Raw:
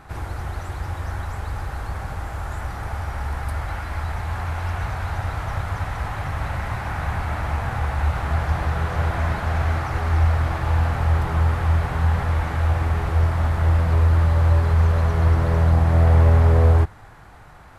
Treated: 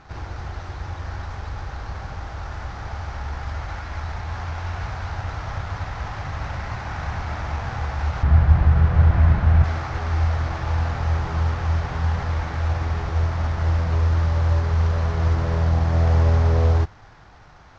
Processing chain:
variable-slope delta modulation 32 kbit/s
0:08.23–0:09.64: bass and treble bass +11 dB, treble −11 dB
level −2.5 dB

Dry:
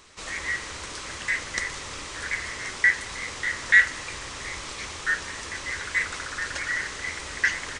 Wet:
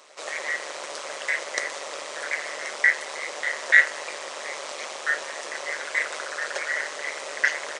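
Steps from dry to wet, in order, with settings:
high-pass with resonance 580 Hz, resonance Q 4.9
amplitude modulation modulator 150 Hz, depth 55%
level +2.5 dB

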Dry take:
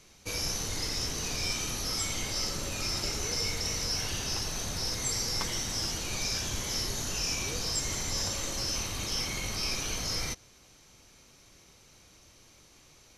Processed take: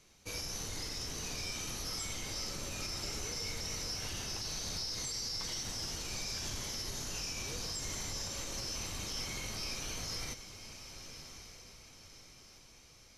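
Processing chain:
0:04.41–0:05.63: parametric band 4,700 Hz +8.5 dB 0.67 octaves
feedback delay with all-pass diffusion 1,151 ms, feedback 45%, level −11 dB
brickwall limiter −23 dBFS, peak gain reduction 8 dB
level −6.5 dB

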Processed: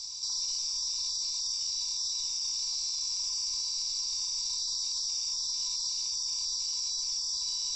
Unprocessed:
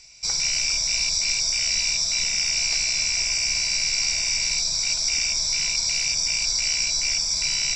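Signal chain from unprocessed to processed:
drawn EQ curve 120 Hz 0 dB, 240 Hz −9 dB, 350 Hz −7 dB, 680 Hz −11 dB, 1,000 Hz +14 dB, 1,800 Hz −17 dB, 2,500 Hz −13 dB, 3,600 Hz +13 dB, 5,100 Hz +14 dB, 8,500 Hz +7 dB
brickwall limiter −22 dBFS, peak gain reduction 22.5 dB
level −3 dB

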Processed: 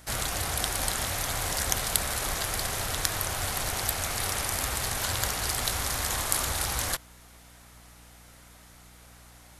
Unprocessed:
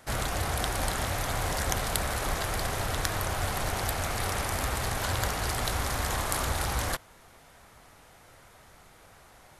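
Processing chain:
high-shelf EQ 2,500 Hz +10 dB
mains hum 60 Hz, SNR 24 dB
level −3.5 dB

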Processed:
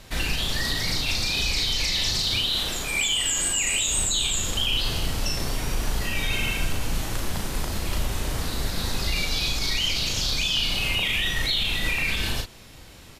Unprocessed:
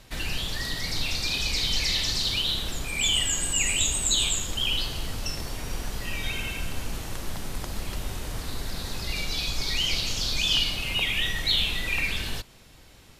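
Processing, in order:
0:02.49–0:03.93: low-shelf EQ 220 Hz −9 dB
brickwall limiter −21 dBFS, peak gain reduction 9.5 dB
double-tracking delay 37 ms −4 dB
level +4.5 dB

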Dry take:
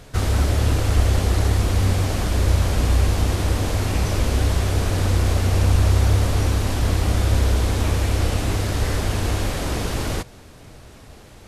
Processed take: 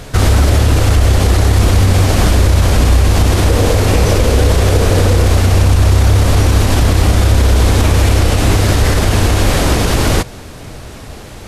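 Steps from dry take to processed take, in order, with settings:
0:03.48–0:05.27: parametric band 480 Hz +8 dB 0.43 octaves
boost into a limiter +14 dB
level −1 dB

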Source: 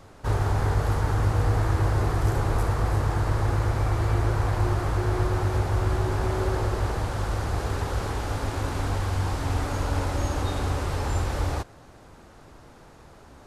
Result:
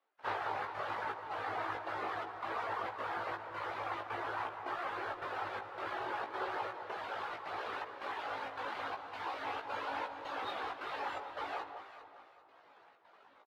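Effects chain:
low-pass filter 3,500 Hz 24 dB per octave
reverb reduction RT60 1.2 s
high-pass filter 710 Hz 12 dB per octave
reverb reduction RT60 0.54 s
in parallel at −4 dB: dead-zone distortion −55.5 dBFS
on the sum: gate pattern "..xxxxx.xxxx" 161 BPM −24 dB
double-tracking delay 18 ms −4 dB
delay that swaps between a low-pass and a high-pass 199 ms, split 1,200 Hz, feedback 56%, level −7 dB
comb and all-pass reverb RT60 2.4 s, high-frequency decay 0.4×, pre-delay 90 ms, DRR 12.5 dB
level −5 dB
Ogg Vorbis 64 kbit/s 44,100 Hz

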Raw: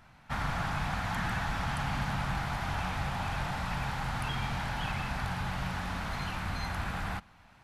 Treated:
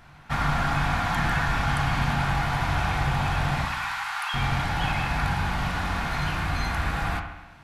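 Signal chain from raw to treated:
0:03.65–0:04.34: Butterworth high-pass 850 Hz 36 dB per octave
delay with a low-pass on its return 67 ms, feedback 62%, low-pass 2,700 Hz, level −7.5 dB
on a send at −5 dB: convolution reverb RT60 0.25 s, pre-delay 3 ms
on the sum: level +6 dB

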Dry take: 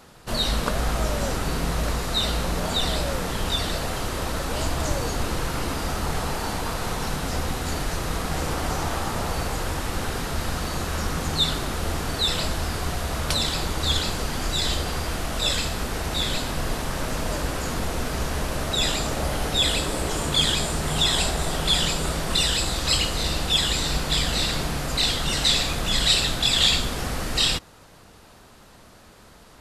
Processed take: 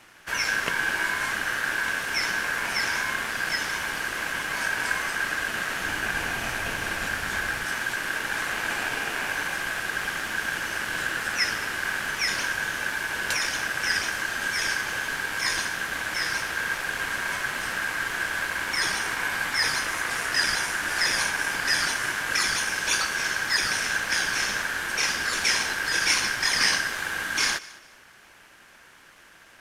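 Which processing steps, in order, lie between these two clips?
ring modulation 1,600 Hz
0:05.81–0:07.65: low-shelf EQ 170 Hz +10 dB
feedback echo with a high-pass in the loop 211 ms, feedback 25%, level −20 dB

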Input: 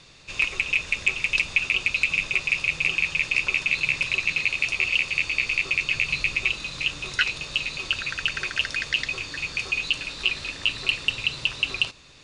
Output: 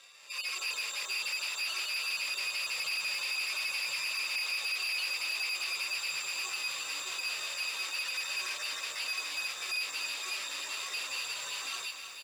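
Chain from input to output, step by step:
harmonic-percussive split with one part muted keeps harmonic
brickwall limiter −25.5 dBFS, peak gain reduction 9 dB
automatic gain control gain up to 6 dB
hard clipping −33 dBFS, distortion −7 dB
single-tap delay 798 ms −19.5 dB
bad sample-rate conversion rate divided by 6×, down filtered, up zero stuff
band-pass filter 790–4,700 Hz
feedback echo at a low word length 316 ms, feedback 35%, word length 9 bits, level −7.5 dB

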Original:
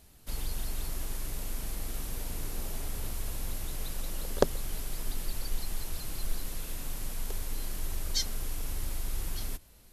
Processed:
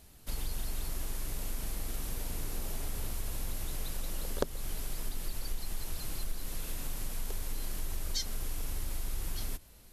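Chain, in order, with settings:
downward compressor 2.5 to 1, threshold −32 dBFS, peak gain reduction 10.5 dB
level +1 dB

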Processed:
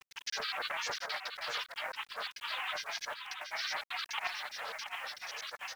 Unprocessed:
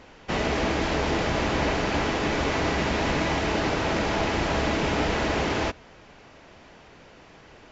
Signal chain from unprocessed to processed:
Chebyshev band-pass filter 610–2,400 Hz, order 5
tilt shelving filter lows −9.5 dB, about 1,200 Hz
comb filter 5.9 ms, depth 99%
compressor whose output falls as the input rises −33 dBFS, ratio −0.5
change of speed 1.34×
gate pattern "x.x.xxx.xxx." 172 BPM −60 dB
granular cloud, grains 20 per second, pitch spread up and down by 12 semitones
bit reduction 9 bits
single-tap delay 679 ms −7.5 dB
highs frequency-modulated by the lows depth 0.26 ms

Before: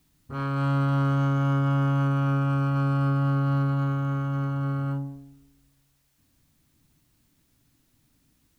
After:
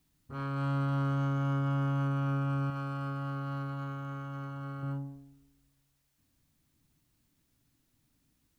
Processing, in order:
0:02.70–0:04.83: low-shelf EQ 460 Hz −7 dB
level −7 dB

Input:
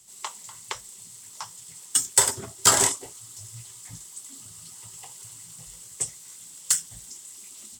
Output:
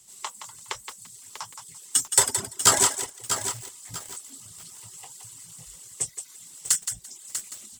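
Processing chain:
feedback echo with a high-pass in the loop 170 ms, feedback 21%, high-pass 440 Hz, level −7.5 dB
reverb reduction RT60 0.6 s
feedback echo at a low word length 643 ms, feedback 35%, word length 6 bits, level −8.5 dB

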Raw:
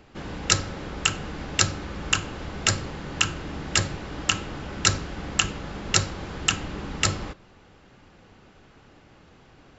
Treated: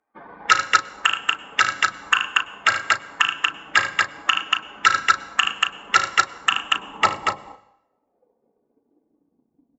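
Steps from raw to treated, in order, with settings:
spectral dynamics exaggerated over time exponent 2
band-pass filter sweep 1,400 Hz → 230 Hz, 0:06.34–0:09.68
on a send: multi-tap delay 53/75/234 ms −17/−9.5/−4.5 dB
on the sum: dynamic equaliser 3,000 Hz, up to +4 dB, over −52 dBFS, Q 3
double-tracking delay 35 ms −8 dB
dense smooth reverb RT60 0.8 s, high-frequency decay 0.9×, pre-delay 90 ms, DRR 15.5 dB
transient designer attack +6 dB, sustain −3 dB
boost into a limiter +18 dB
level −1 dB

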